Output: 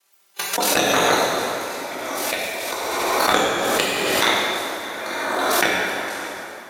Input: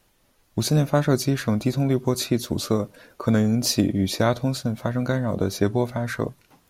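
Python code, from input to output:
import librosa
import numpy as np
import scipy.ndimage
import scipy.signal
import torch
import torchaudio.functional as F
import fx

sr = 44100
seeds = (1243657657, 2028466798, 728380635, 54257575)

y = fx.spec_clip(x, sr, under_db=27)
y = scipy.signal.sosfilt(scipy.signal.butter(2, 360.0, 'highpass', fs=sr, output='sos'), y)
y = fx.level_steps(y, sr, step_db=20)
y = y * np.sin(2.0 * np.pi * 21.0 * np.arange(len(y)) / sr)
y = fx.noise_reduce_blind(y, sr, reduce_db=29)
y = fx.env_flanger(y, sr, rest_ms=5.1, full_db=-22.0)
y = y + 10.0 ** (-18.5 / 20.0) * np.pad(y, (int(615 * sr / 1000.0), 0))[:len(y)]
y = fx.rev_plate(y, sr, seeds[0], rt60_s=2.6, hf_ratio=0.7, predelay_ms=0, drr_db=-6.5)
y = fx.pre_swell(y, sr, db_per_s=20.0)
y = F.gain(torch.from_numpy(y), 6.5).numpy()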